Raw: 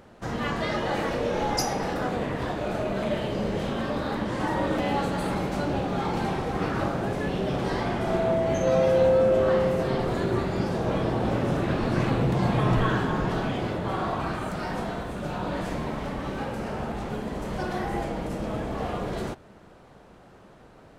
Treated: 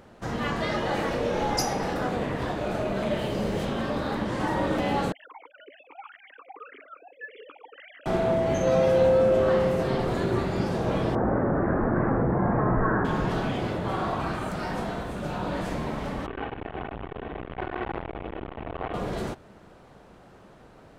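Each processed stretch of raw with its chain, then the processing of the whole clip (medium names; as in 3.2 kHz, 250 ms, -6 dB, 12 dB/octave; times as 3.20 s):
3.19–3.65 s: treble shelf 8.8 kHz +9.5 dB + short-mantissa float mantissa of 6-bit
5.12–8.06 s: formants replaced by sine waves + talking filter i-u 1.8 Hz
11.15–13.05 s: steep low-pass 1.8 kHz 48 dB/octave + peaking EQ 130 Hz -5.5 dB 0.69 oct + level flattener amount 50%
16.26–18.94 s: CVSD coder 16 kbps + comb 2.7 ms, depth 97% + transformer saturation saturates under 870 Hz
whole clip: none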